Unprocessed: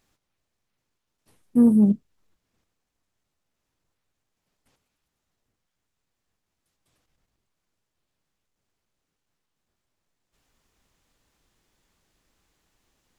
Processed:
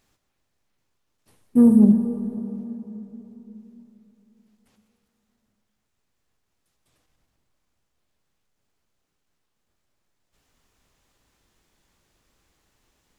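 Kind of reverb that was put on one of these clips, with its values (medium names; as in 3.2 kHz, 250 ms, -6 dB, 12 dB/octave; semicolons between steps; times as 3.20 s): plate-style reverb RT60 3.7 s, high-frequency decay 0.55×, DRR 6 dB; trim +2 dB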